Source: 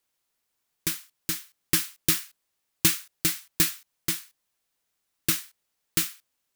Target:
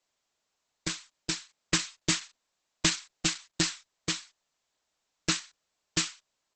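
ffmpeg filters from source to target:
-af "equalizer=f=100:t=o:w=0.33:g=-10,equalizer=f=630:t=o:w=0.33:g=8,equalizer=f=1k:t=o:w=0.33:g=5,equalizer=f=4k:t=o:w=0.33:g=3,equalizer=f=12.5k:t=o:w=0.33:g=-10" -ar 48000 -c:a libopus -b:a 10k

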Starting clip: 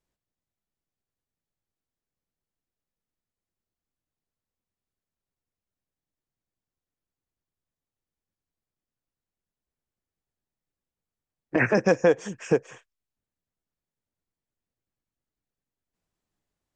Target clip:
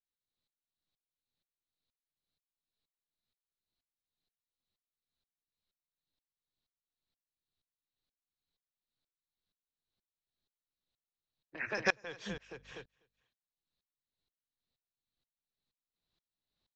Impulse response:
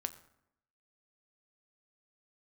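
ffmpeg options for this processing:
-filter_complex "[0:a]acrossover=split=180|1000[a][b][c];[a]aeval=exprs='0.0119*(abs(mod(val(0)/0.0119+3,4)-2)-1)':c=same[d];[b]acompressor=threshold=-31dB:ratio=6[e];[c]lowpass=f=4k:t=q:w=8[f];[d][e][f]amix=inputs=3:normalize=0,asettb=1/sr,asplit=3[g][h][i];[g]atrim=end=12.294[j];[h]atrim=start=12.29:end=12.72,asetpts=PTS-STARTPTS,afade=t=in:d=0.004:c=qsin,afade=t=out:st=0.426:d=0.004:c=qsin,aeval=exprs='val(0)+0.00316*(sin(2*PI*50*n/s)+sin(2*PI*2*50*n/s)/2+sin(2*PI*3*50*n/s)/3+sin(2*PI*4*50*n/s)/4+sin(2*PI*5*50*n/s)/5)':c=same[k];[i]atrim=start=12.716[l];[j][k]acrossfade=d=0.004:c1=hsin:c2=qsin[m];[m][l]acrossfade=d=0.004:c1=qsin:c2=hsin,asplit=2[n][o];[o]aecho=0:1:247|494:0.178|0.0302[p];[n][p]amix=inputs=2:normalize=0,aeval=exprs='val(0)*pow(10,-27*if(lt(mod(-2.1*n/s,1),2*abs(-2.1)/1000),1-mod(-2.1*n/s,1)/(2*abs(-2.1)/1000),(mod(-2.1*n/s,1)-2*abs(-2.1)/1000)/(1-2*abs(-2.1)/1000))/20)':c=same"

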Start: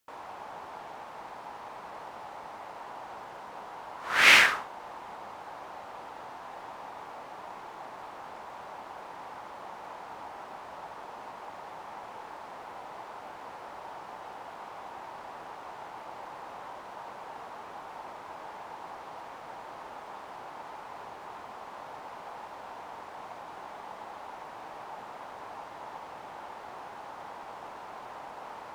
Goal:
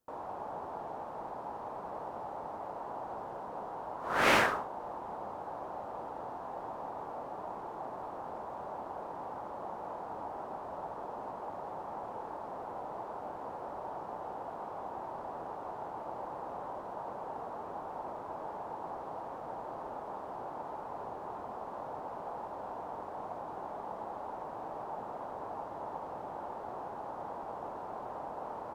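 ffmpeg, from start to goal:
-af "firequalizer=gain_entry='entry(580,0);entry(2100,-18);entry(11000,-13)':delay=0.05:min_phase=1,volume=5dB"

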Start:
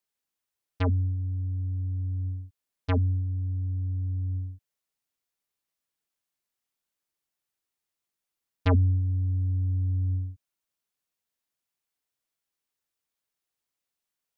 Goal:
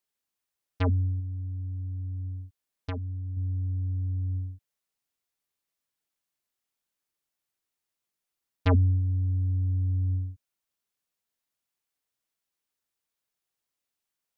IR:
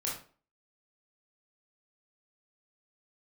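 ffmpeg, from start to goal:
-filter_complex "[0:a]asettb=1/sr,asplit=3[a][b][c];[a]atrim=end=1.194[d];[b]atrim=start=1.19:end=3.37,asetpts=PTS-STARTPTS,afade=t=in:d=0.004:c=qsin,afade=t=out:st=2.176:d=0.004:c=qsin,acompressor=threshold=-31dB:ratio=12[e];[c]atrim=start=3.366[f];[d][e]acrossfade=d=0.004:c1=hsin:c2=qsin[g];[g][f]acrossfade=d=0.004:c1=qsin:c2=hsin"

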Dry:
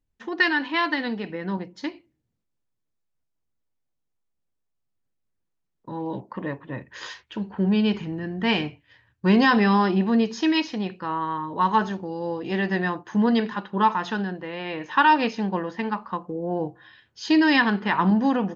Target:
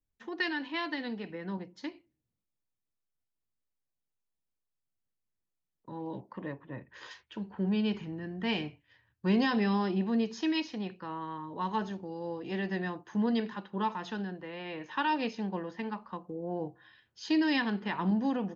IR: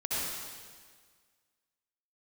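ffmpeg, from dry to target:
-filter_complex "[0:a]asettb=1/sr,asplit=3[a][b][c];[a]atrim=end=6.524[d];[b]atrim=start=6.52:end=7.11,asetpts=PTS-STARTPTS,afade=t=in:d=0.004:c=qsin,afade=t=out:st=0.586:d=0.004:c=qsin,lowpass=f=2.8k:p=1[e];[c]atrim=start=7.106[f];[d][e]acrossfade=d=0.004:c1=hsin:c2=qsin[g];[g][f]acrossfade=d=0.004:c1=qsin:c2=hsin,acrossover=split=310|940|1700[h][i][j][k];[j]acompressor=threshold=-44dB:ratio=6[l];[h][i][l][k]amix=inputs=4:normalize=0,volume=-8.5dB"

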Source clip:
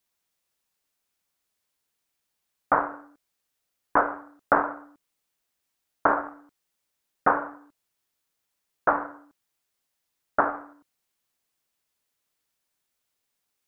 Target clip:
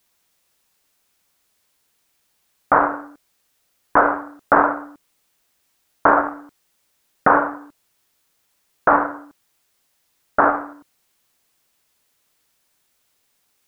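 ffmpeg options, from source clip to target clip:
-af "alimiter=level_in=13.5dB:limit=-1dB:release=50:level=0:latency=1,volume=-1dB"

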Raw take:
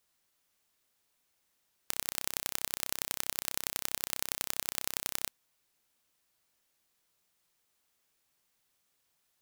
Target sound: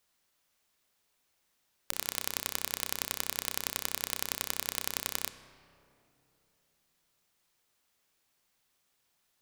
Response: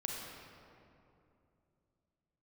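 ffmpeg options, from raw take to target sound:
-filter_complex "[0:a]bandreject=f=48.99:t=h:w=4,bandreject=f=97.98:t=h:w=4,bandreject=f=146.97:t=h:w=4,bandreject=f=195.96:t=h:w=4,bandreject=f=244.95:t=h:w=4,bandreject=f=293.94:t=h:w=4,bandreject=f=342.93:t=h:w=4,bandreject=f=391.92:t=h:w=4,bandreject=f=440.91:t=h:w=4,bandreject=f=489.9:t=h:w=4,bandreject=f=538.89:t=h:w=4,asplit=2[a][b];[1:a]atrim=start_sample=2205,lowpass=8.3k[c];[b][c]afir=irnorm=-1:irlink=0,volume=-9.5dB[d];[a][d]amix=inputs=2:normalize=0"

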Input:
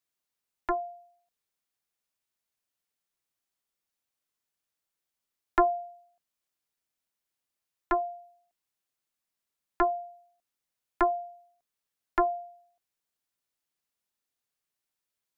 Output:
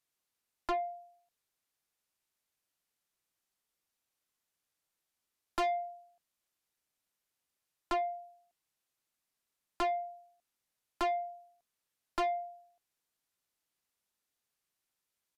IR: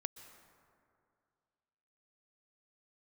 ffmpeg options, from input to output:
-af "aresample=32000,aresample=44100,asoftclip=type=tanh:threshold=-30dB,volume=1.5dB"

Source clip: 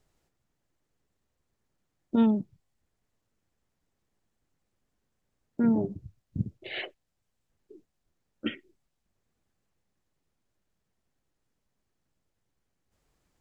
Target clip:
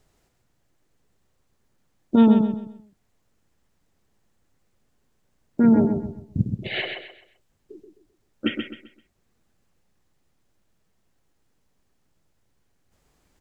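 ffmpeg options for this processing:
-af "aecho=1:1:130|260|390|520:0.501|0.16|0.0513|0.0164,volume=7.5dB"

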